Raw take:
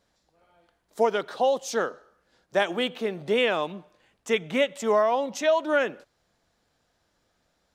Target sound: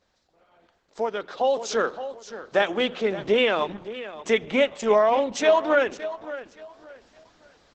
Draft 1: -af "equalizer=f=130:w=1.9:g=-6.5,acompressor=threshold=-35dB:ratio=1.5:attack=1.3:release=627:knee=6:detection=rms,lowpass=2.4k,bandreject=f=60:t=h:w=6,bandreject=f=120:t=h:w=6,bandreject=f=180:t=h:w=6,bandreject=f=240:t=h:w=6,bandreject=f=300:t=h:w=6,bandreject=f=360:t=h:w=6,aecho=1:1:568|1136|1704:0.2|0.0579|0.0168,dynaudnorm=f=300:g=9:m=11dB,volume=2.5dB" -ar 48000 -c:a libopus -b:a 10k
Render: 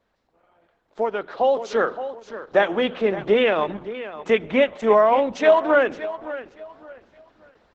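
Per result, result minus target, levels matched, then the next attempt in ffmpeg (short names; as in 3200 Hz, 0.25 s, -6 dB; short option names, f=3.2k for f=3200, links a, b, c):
8000 Hz band -13.0 dB; compressor: peak gain reduction -3 dB
-af "equalizer=f=130:w=1.9:g=-6.5,acompressor=threshold=-35dB:ratio=1.5:attack=1.3:release=627:knee=6:detection=rms,lowpass=6k,bandreject=f=60:t=h:w=6,bandreject=f=120:t=h:w=6,bandreject=f=180:t=h:w=6,bandreject=f=240:t=h:w=6,bandreject=f=300:t=h:w=6,bandreject=f=360:t=h:w=6,aecho=1:1:568|1136|1704:0.2|0.0579|0.0168,dynaudnorm=f=300:g=9:m=11dB,volume=2.5dB" -ar 48000 -c:a libopus -b:a 10k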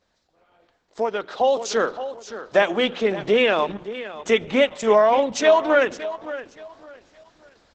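compressor: peak gain reduction -3 dB
-af "equalizer=f=130:w=1.9:g=-6.5,acompressor=threshold=-44.5dB:ratio=1.5:attack=1.3:release=627:knee=6:detection=rms,lowpass=6k,bandreject=f=60:t=h:w=6,bandreject=f=120:t=h:w=6,bandreject=f=180:t=h:w=6,bandreject=f=240:t=h:w=6,bandreject=f=300:t=h:w=6,bandreject=f=360:t=h:w=6,aecho=1:1:568|1136|1704:0.2|0.0579|0.0168,dynaudnorm=f=300:g=9:m=11dB,volume=2.5dB" -ar 48000 -c:a libopus -b:a 10k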